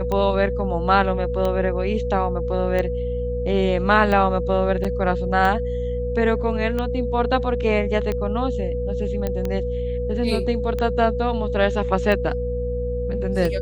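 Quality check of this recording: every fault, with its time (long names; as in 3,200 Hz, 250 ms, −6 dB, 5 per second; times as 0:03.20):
mains hum 60 Hz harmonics 4 −27 dBFS
scratch tick 45 rpm −13 dBFS
whistle 490 Hz −25 dBFS
0:04.84–0:04.85: drop-out 6.3 ms
0:09.27: click −12 dBFS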